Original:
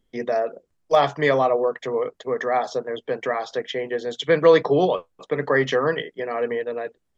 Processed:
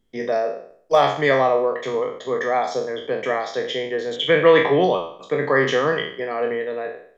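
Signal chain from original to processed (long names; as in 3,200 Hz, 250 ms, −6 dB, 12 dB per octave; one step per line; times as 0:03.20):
peak hold with a decay on every bin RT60 0.57 s
0:04.16–0:04.84: high shelf with overshoot 3,700 Hz −7 dB, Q 3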